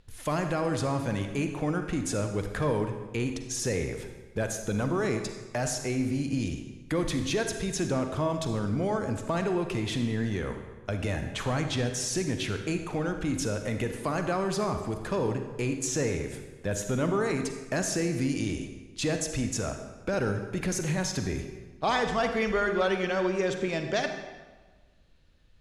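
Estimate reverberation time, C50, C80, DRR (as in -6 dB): 1.3 s, 6.5 dB, 8.5 dB, 6.0 dB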